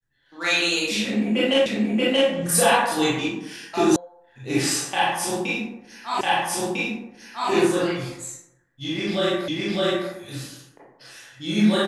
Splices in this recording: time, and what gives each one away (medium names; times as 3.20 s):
1.66 s: repeat of the last 0.63 s
3.96 s: sound stops dead
6.21 s: repeat of the last 1.3 s
9.48 s: repeat of the last 0.61 s